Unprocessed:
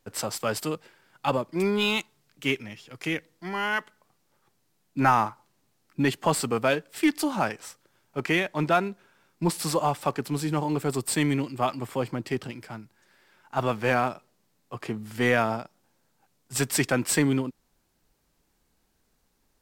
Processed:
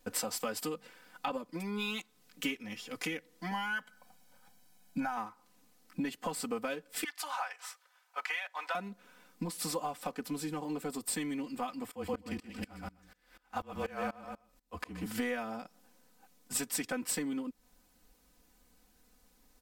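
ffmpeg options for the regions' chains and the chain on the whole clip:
-filter_complex "[0:a]asettb=1/sr,asplit=3[a][b][c];[a]atrim=end=0.744[d];[b]atrim=start=0.74:end=1.31,asetpts=PTS-STARTPTS,afade=t=in:d=0.004:c=qsin,afade=t=out:st=0.566:d=0.004:c=qsin,acrossover=split=4000[e][f];[f]acompressor=threshold=-54dB:ratio=4:attack=1:release=60[g];[e][g]amix=inputs=2:normalize=0,bandreject=f=50:t=h:w=6,bandreject=f=100:t=h:w=6,bandreject=f=150:t=h:w=6,bandreject=f=200:t=h:w=6,bandreject=f=250:t=h:w=6[h];[c]atrim=start=1.306[i];[d][h]acrossfade=d=0.004:c1=hsin:c2=qsin[j];[j][i]acrossfade=d=0.004:c1=qsin:c2=hsin,asettb=1/sr,asplit=3[k][l][m];[k]atrim=end=3.514[n];[l]atrim=start=3.51:end=5.17,asetpts=PTS-STARTPTS,afade=t=in:d=0.004:c=qsin,afade=t=out:st=1.656:d=0.004:c=qsin,aecho=1:1:1.3:0.7,atrim=end_sample=73206,acompressor=threshold=-20dB:ratio=2:attack=3.2:release=140:knee=1:detection=peak[o];[m]atrim=start=5.166[p];[n][o]acrossfade=d=0.004:c1=hsin:c2=qsin[q];[q][p]acrossfade=d=0.004:c1=qsin:c2=hsin,asettb=1/sr,asplit=3[r][s][t];[r]atrim=end=7.044[u];[s]atrim=start=7.04:end=8.75,asetpts=PTS-STARTPTS,afade=t=in:d=0.004:c=qsin,afade=t=out:st=1.706:d=0.004:c=qsin,highpass=f=810:w=0.5412,highpass=f=810:w=1.3066,highshelf=f=4.4k:g=-9.5[v];[t]atrim=start=8.746[w];[u][v]acrossfade=d=0.004:c1=hsin:c2=qsin[x];[x][w]acrossfade=d=0.004:c1=qsin:c2=hsin,asettb=1/sr,asplit=3[y][z][aa];[y]atrim=end=11.914[ab];[z]atrim=start=11.91:end=15.06,asetpts=PTS-STARTPTS,afade=t=in:d=0.004:c=qsin,afade=t=out:st=3.146:d=0.004:c=qsin,afreqshift=-33,aecho=1:1:126|252|378:0.668|0.154|0.0354,atrim=end_sample=138915,aeval=exprs='val(0)*pow(10,-26*if(lt(mod(-4.1*n/s,1),2*abs(-4.1)/1000),1-mod(-4.1*n/s,1)/(2*abs(-4.1)/1000),(mod(-4.1*n/s,1)-2*abs(-4.1)/1000)/(1-2*abs(-4.1)/1000))/20)':c=same[ac];[aa]atrim=start=15.056[ad];[ab][ac]acrossfade=d=0.004:c1=hsin:c2=qsin[ae];[ae][ad]acrossfade=d=0.004:c1=qsin:c2=hsin,acompressor=threshold=-36dB:ratio=10,highshelf=f=10k:g=5,aecho=1:1:4:0.98"

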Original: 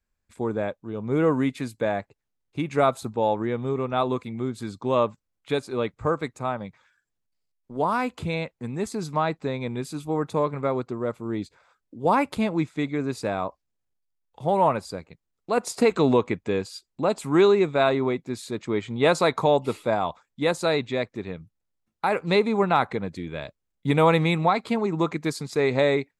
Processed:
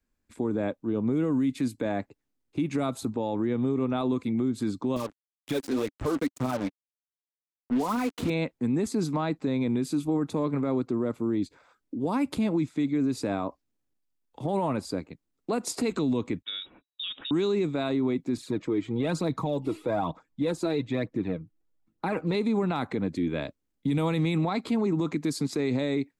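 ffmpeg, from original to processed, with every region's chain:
-filter_complex "[0:a]asettb=1/sr,asplit=3[a][b][c];[a]atrim=end=4.964[d];[b]atrim=start=4.96:end=8.3,asetpts=PTS-STARTPTS,afade=t=in:d=0.004:c=qsin,afade=t=out:st=3.336:d=0.004:c=qsin,acompressor=threshold=-26dB:ratio=4:attack=3.2:release=140:knee=1:detection=peak,aphaser=in_gain=1:out_gain=1:delay=4.5:decay=0.6:speed=2:type=triangular,acrusher=bits=5:mix=0:aa=0.5[e];[c]atrim=start=8.296[f];[d][e]acrossfade=d=0.004:c1=hsin:c2=qsin[g];[g][f]acrossfade=d=0.004:c1=qsin:c2=hsin,asettb=1/sr,asplit=3[h][i][j];[h]atrim=end=16.424[k];[i]atrim=start=16.42:end=17.31,asetpts=PTS-STARTPTS,afade=t=in:d=0.004:c=qsin,afade=t=out:st=0.886:d=0.004:c=qsin,agate=range=-19dB:threshold=-49dB:ratio=16:release=100:detection=peak,lowpass=f=3.3k:t=q:w=0.5098,lowpass=f=3.3k:t=q:w=0.6013,lowpass=f=3.3k:t=q:w=0.9,lowpass=f=3.3k:t=q:w=2.563,afreqshift=-3900,acompressor=threshold=-32dB:ratio=6:attack=3.2:release=140:knee=1:detection=peak[l];[j]atrim=start=17.306[m];[k][l]acrossfade=d=0.004:c1=hsin:c2=qsin[n];[n][m]acrossfade=d=0.004:c1=qsin:c2=hsin,asettb=1/sr,asplit=3[o][p][q];[o]atrim=end=18.374[r];[p]atrim=start=18.37:end=22.35,asetpts=PTS-STARTPTS,afade=t=in:d=0.004:c=qsin,afade=t=out:st=3.976:d=0.004:c=qsin,highshelf=f=2.5k:g=-9.5,aecho=1:1:6.3:0.35,atrim=end_sample=175518,aphaser=in_gain=1:out_gain=1:delay=3.1:decay=0.49:speed=1.1:type=triangular[s];[q]atrim=start=22.346[t];[r][s]acrossfade=d=0.004:c1=hsin:c2=qsin[u];[u][t]acrossfade=d=0.004:c1=qsin:c2=hsin,equalizer=f=280:w=1.8:g=12,acrossover=split=180|3000[v][w][x];[w]acompressor=threshold=-22dB:ratio=6[y];[v][y][x]amix=inputs=3:normalize=0,alimiter=limit=-19dB:level=0:latency=1:release=29"

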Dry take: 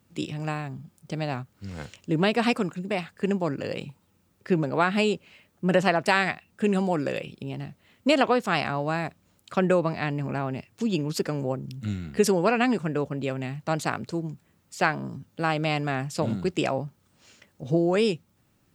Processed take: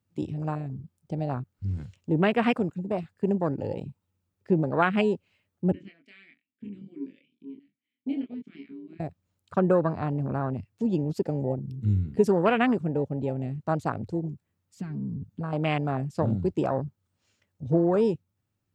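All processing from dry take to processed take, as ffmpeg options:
-filter_complex "[0:a]asettb=1/sr,asplit=3[a][b][c];[a]atrim=end=5.724[d];[b]atrim=start=5.72:end=9,asetpts=PTS-STARTPTS,afade=t=in:d=0.004:c=qsin,afade=t=out:st=3.276:d=0.004:c=qsin,asplit=3[e][f][g];[e]bandpass=f=270:t=q:w=8,volume=0dB[h];[f]bandpass=f=2.29k:t=q:w=8,volume=-6dB[i];[g]bandpass=f=3.01k:t=q:w=8,volume=-9dB[j];[h][i][j]amix=inputs=3:normalize=0,lowshelf=f=220:g=-8.5,asplit=2[k][l];[l]adelay=25,volume=-4dB[m];[k][m]amix=inputs=2:normalize=0,atrim=end_sample=144648[n];[c]atrim=start=8.996[o];[d][n]acrossfade=d=0.004:c1=hsin:c2=qsin[p];[p][o]acrossfade=d=0.004:c1=qsin:c2=hsin,asettb=1/sr,asplit=3[q][r][s];[q]atrim=end=14.774[t];[r]atrim=start=14.77:end=15.53,asetpts=PTS-STARTPTS,afade=t=in:d=0.004:c=qsin,afade=t=out:st=0.756:d=0.004:c=qsin,bass=f=250:g=13,treble=f=4k:g=0,aecho=1:1:4.4:0.52,atrim=end_sample=33516,acompressor=threshold=-34dB:ratio=2.5:attack=3.2:release=140:knee=1:detection=peak[u];[s]atrim=start=15.526[v];[t][u]acrossfade=d=0.004:c1=hsin:c2=qsin[w];[w][v]acrossfade=d=0.004:c1=qsin:c2=hsin,equalizer=f=95:t=o:w=0.38:g=12,afwtdn=0.0355"

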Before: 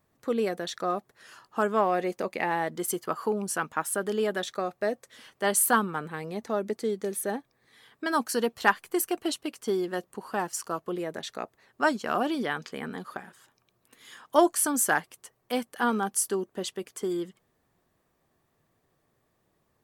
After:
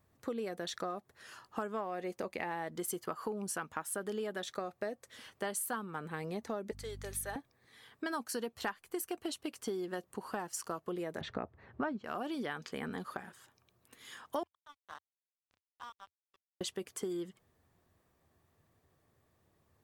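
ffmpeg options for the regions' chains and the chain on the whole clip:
-filter_complex "[0:a]asettb=1/sr,asplit=3[a][b][c];[a]atrim=end=6.714[d];[b]atrim=start=6.71:end=7.36,asetpts=PTS-STARTPTS,afade=t=in:d=0.004:c=qsin,afade=t=out:st=0.646:d=0.004:c=qsin,highpass=870,aeval=exprs='val(0)+0.00447*(sin(2*PI*50*n/s)+sin(2*PI*2*50*n/s)/2+sin(2*PI*3*50*n/s)/3+sin(2*PI*4*50*n/s)/4+sin(2*PI*5*50*n/s)/5)':c=same[e];[c]atrim=start=7.356[f];[d][e]acrossfade=d=0.004:c1=hsin:c2=qsin[g];[g][f]acrossfade=d=0.004:c1=qsin:c2=hsin,asettb=1/sr,asplit=3[h][i][j];[h]atrim=end=11.214[k];[i]atrim=start=11.21:end=12.04,asetpts=PTS-STARTPTS,afade=t=in:d=0.004:c=qsin,afade=t=out:st=0.826:d=0.004:c=qsin,lowpass=2k,equalizer=f=62:w=0.31:g=11.5,acontrast=58[l];[j]atrim=start=12.036[m];[k][l]acrossfade=d=0.004:c1=hsin:c2=qsin[n];[n][m]acrossfade=d=0.004:c1=qsin:c2=hsin,asettb=1/sr,asplit=3[o][p][q];[o]atrim=end=14.434[r];[p]atrim=start=14.43:end=16.61,asetpts=PTS-STARTPTS,afade=t=in:d=0.004:c=qsin,afade=t=out:st=2.176:d=0.004:c=qsin,acompressor=threshold=-34dB:ratio=1.5:attack=3.2:release=140:knee=1:detection=peak,bandpass=f=1.1k:t=q:w=9,aeval=exprs='sgn(val(0))*max(abs(val(0))-0.00562,0)':c=same[s];[q]atrim=start=16.606[t];[r][s]acrossfade=d=0.004:c1=hsin:c2=qsin[u];[u][t]acrossfade=d=0.004:c1=qsin:c2=hsin,equalizer=f=83:t=o:w=0.62:g=10.5,acompressor=threshold=-33dB:ratio=6,volume=-2dB"

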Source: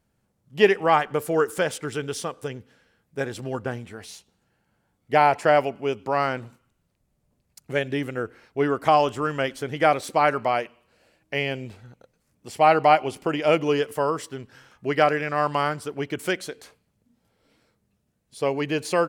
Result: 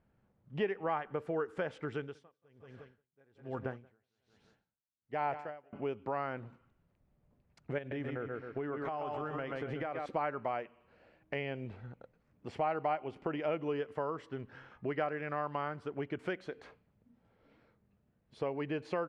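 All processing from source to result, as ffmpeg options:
-filter_complex "[0:a]asettb=1/sr,asplit=3[a][b][c];[a]atrim=end=1.974[d];[b]atrim=start=1.97:end=5.73,asetpts=PTS-STARTPTS,afade=t=in:d=0.004:c=qsin,afade=t=out:st=3.756:d=0.004:c=qsin,highshelf=f=4.7k:g=6,aecho=1:1:179|358|537:0.237|0.0806|0.0274,atrim=end_sample=165816,aeval=exprs='val(0)*pow(10,-39*(0.5-0.5*cos(2*PI*1.2*n/s))/20)':c=same[e];[c]atrim=start=5.726[f];[d][e]acrossfade=d=0.004:c1=hsin:c2=qsin[g];[g][f]acrossfade=d=0.004:c1=qsin:c2=hsin,asettb=1/sr,asplit=3[h][i][j];[h]atrim=end=7.784[k];[i]atrim=start=7.78:end=10.06,asetpts=PTS-STARTPTS,afade=t=in:d=0.004:c=qsin,afade=t=out:st=2.276:d=0.004:c=qsin,aecho=1:1:131|262|393|524:0.447|0.165|0.0612|0.0226,atrim=end_sample=100548,acompressor=threshold=-26dB:ratio=6:attack=3.2:release=140:knee=1:detection=peak[l];[j]atrim=start=10.056[m];[k][l]acrossfade=d=0.004:c1=hsin:c2=qsin[n];[n][m]acrossfade=d=0.004:c1=qsin:c2=hsin,lowpass=2.1k,acompressor=threshold=-37dB:ratio=2.5,volume=-1dB"

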